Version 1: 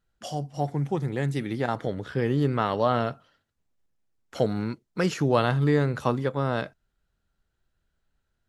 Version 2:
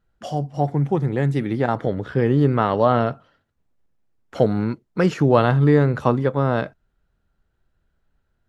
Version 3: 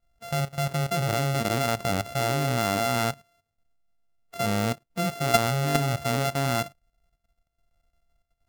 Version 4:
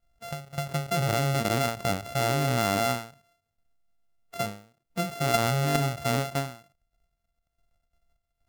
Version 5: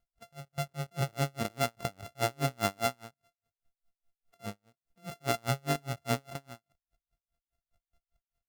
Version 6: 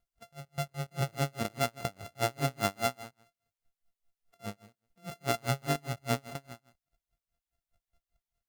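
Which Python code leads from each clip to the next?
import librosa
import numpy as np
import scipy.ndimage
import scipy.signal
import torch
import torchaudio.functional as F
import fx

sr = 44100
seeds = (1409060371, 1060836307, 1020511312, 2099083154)

y1 = fx.high_shelf(x, sr, hz=2900.0, db=-12.0)
y1 = F.gain(torch.from_numpy(y1), 7.0).numpy()
y2 = np.r_[np.sort(y1[:len(y1) // 64 * 64].reshape(-1, 64), axis=1).ravel(), y1[len(y1) // 64 * 64:]]
y2 = fx.hpss(y2, sr, part='percussive', gain_db=-18)
y2 = fx.level_steps(y2, sr, step_db=14)
y2 = F.gain(torch.from_numpy(y2), 3.0).numpy()
y3 = fx.end_taper(y2, sr, db_per_s=130.0)
y4 = y3 * 10.0 ** (-37 * (0.5 - 0.5 * np.cos(2.0 * np.pi * 4.9 * np.arange(len(y3)) / sr)) / 20.0)
y5 = y4 + 10.0 ** (-17.5 / 20.0) * np.pad(y4, (int(163 * sr / 1000.0), 0))[:len(y4)]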